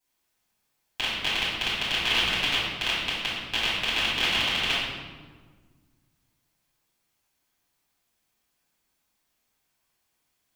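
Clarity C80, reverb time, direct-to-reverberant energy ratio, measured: 2.0 dB, 1.6 s, -10.5 dB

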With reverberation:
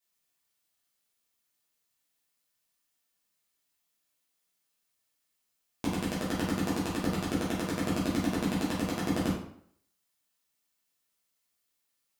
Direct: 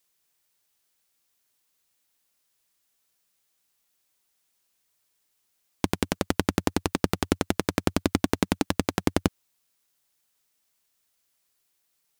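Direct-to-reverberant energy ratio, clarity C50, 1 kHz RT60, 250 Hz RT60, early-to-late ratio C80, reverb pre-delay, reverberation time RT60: -9.0 dB, 3.0 dB, 0.65 s, 0.60 s, 6.5 dB, 7 ms, 0.65 s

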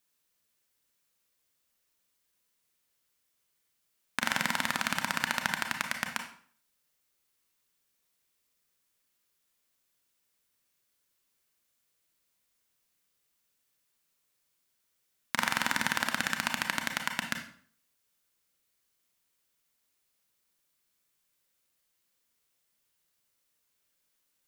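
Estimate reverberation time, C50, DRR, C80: 0.50 s, 8.0 dB, 4.5 dB, 12.0 dB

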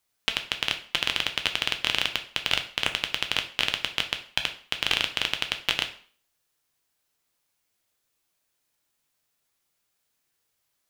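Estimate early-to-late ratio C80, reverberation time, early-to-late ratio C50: 16.5 dB, 0.45 s, 12.0 dB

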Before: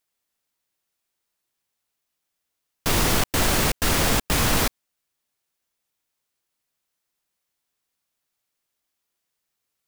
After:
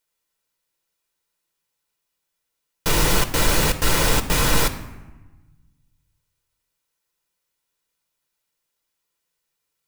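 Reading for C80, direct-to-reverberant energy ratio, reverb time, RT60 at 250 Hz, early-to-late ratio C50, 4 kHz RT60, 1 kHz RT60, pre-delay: 15.0 dB, 7.0 dB, 1.1 s, 1.6 s, 13.0 dB, 0.70 s, 1.1 s, 6 ms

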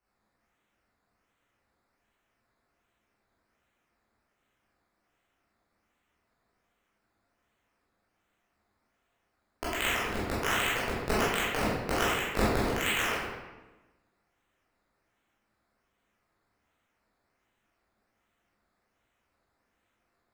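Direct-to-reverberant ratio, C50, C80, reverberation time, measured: -10.0 dB, -2.0 dB, 1.0 dB, 1.1 s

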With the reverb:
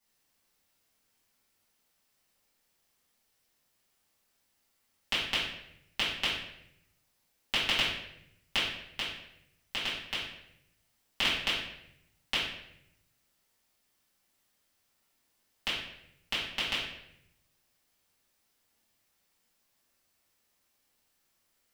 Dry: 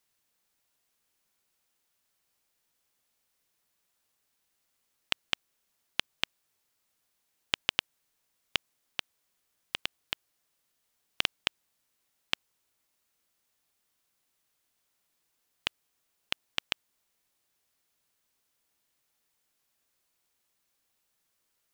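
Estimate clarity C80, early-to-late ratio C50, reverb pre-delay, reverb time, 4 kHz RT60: 5.5 dB, 1.5 dB, 4 ms, 0.75 s, 0.60 s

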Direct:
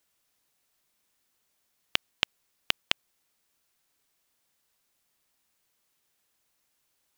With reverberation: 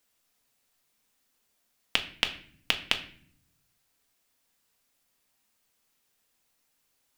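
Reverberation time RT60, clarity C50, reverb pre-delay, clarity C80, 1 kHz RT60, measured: 0.55 s, 12.5 dB, 4 ms, 16.0 dB, 0.45 s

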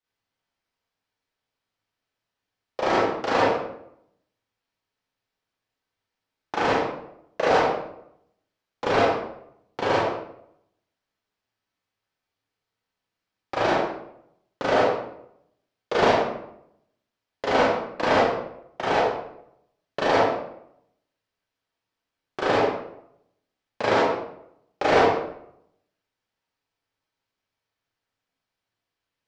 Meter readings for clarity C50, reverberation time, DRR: -2.0 dB, 0.75 s, -8.0 dB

